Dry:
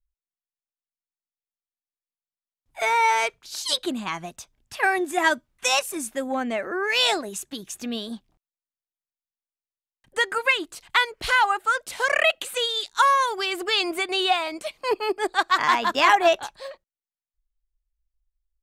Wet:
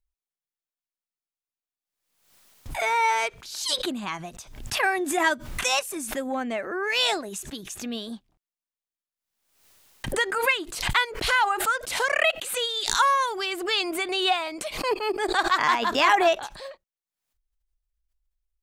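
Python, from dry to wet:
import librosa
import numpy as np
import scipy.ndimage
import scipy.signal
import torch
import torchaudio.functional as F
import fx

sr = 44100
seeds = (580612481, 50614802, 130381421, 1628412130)

y = fx.pre_swell(x, sr, db_per_s=70.0)
y = y * 10.0 ** (-2.5 / 20.0)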